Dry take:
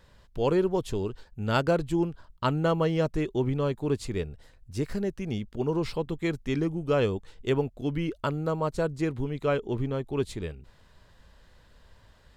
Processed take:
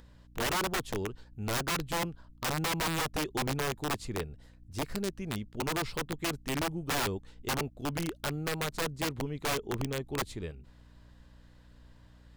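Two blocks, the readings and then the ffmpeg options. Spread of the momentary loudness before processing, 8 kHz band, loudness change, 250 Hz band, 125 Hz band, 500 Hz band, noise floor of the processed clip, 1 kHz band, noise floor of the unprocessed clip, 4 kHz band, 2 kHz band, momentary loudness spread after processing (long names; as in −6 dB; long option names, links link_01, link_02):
9 LU, +11.5 dB, −4.5 dB, −7.5 dB, −7.0 dB, −9.0 dB, −57 dBFS, −1.0 dB, −58 dBFS, +5.0 dB, +2.5 dB, 8 LU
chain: -af "aeval=exprs='(mod(11.2*val(0)+1,2)-1)/11.2':channel_layout=same,aeval=exprs='val(0)+0.00282*(sin(2*PI*60*n/s)+sin(2*PI*2*60*n/s)/2+sin(2*PI*3*60*n/s)/3+sin(2*PI*4*60*n/s)/4+sin(2*PI*5*60*n/s)/5)':channel_layout=same,acompressor=mode=upward:threshold=-50dB:ratio=2.5,volume=-4.5dB"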